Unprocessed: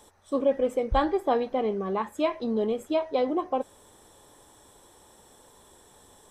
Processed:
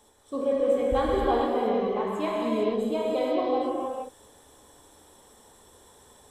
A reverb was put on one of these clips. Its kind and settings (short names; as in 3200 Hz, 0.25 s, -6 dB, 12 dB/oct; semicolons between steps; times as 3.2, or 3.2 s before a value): non-linear reverb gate 0.49 s flat, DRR -5 dB; gain -5.5 dB